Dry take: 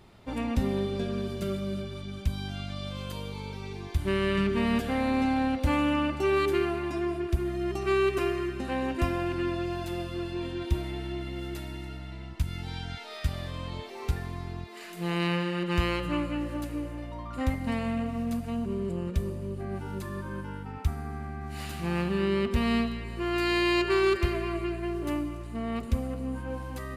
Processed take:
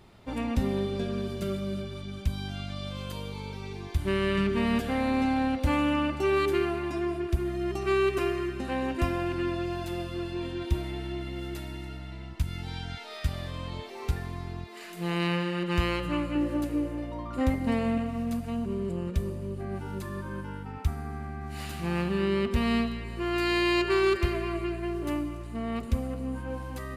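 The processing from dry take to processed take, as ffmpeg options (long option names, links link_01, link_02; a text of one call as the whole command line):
ffmpeg -i in.wav -filter_complex "[0:a]asettb=1/sr,asplit=3[link_01][link_02][link_03];[link_01]atrim=end=16.354[link_04];[link_02]atrim=start=16.35:end=17.98,asetpts=PTS-STARTPTS,afade=type=in:duration=0.004:curve=qsin,afade=type=out:start_time=1.626:duration=0.004:curve=qsin,equalizer=frequency=380:width_type=o:width=1.2:gain=8[link_05];[link_03]atrim=start=17.976[link_06];[link_04][link_05]acrossfade=duration=0.004:curve1=hsin:curve2=qsin[link_07];[link_07][link_06]acrossfade=duration=0.004:curve1=qsin:curve2=hsin" out.wav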